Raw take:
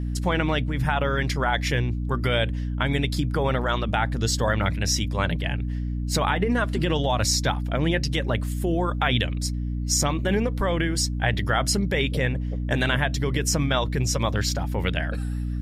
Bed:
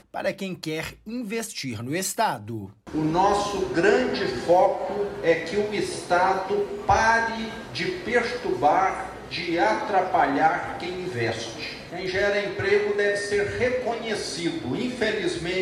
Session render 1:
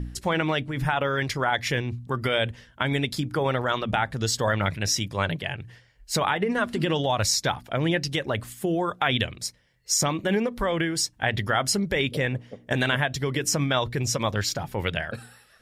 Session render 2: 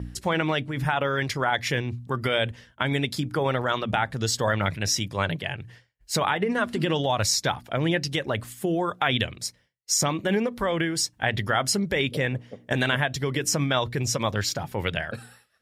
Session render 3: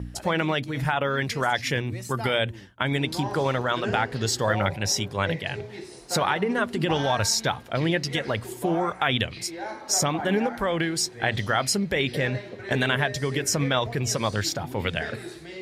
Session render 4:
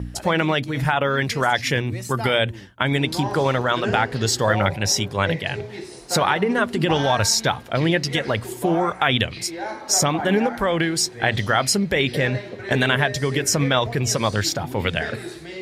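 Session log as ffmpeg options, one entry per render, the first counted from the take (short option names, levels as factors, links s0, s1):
-af "bandreject=f=60:t=h:w=4,bandreject=f=120:t=h:w=4,bandreject=f=180:t=h:w=4,bandreject=f=240:t=h:w=4,bandreject=f=300:t=h:w=4"
-af "agate=range=0.0224:threshold=0.00398:ratio=3:detection=peak,highpass=60"
-filter_complex "[1:a]volume=0.224[s0];[0:a][s0]amix=inputs=2:normalize=0"
-af "volume=1.68"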